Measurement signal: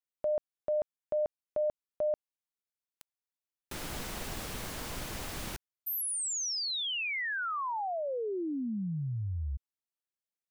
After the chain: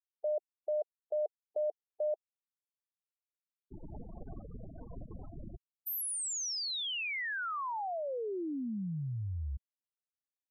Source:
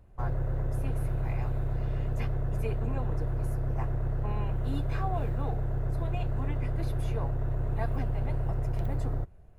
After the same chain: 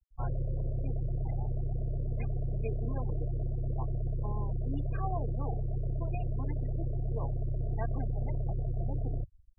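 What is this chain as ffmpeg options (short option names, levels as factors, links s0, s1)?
-af "aeval=exprs='val(0)+0.00112*sin(2*PI*680*n/s)':c=same,afftfilt=real='re*gte(hypot(re,im),0.0282)':imag='im*gte(hypot(re,im),0.0282)':win_size=1024:overlap=0.75,volume=0.75"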